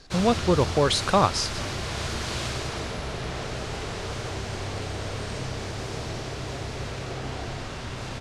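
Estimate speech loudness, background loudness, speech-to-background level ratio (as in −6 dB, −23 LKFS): −23.5 LKFS, −32.0 LKFS, 8.5 dB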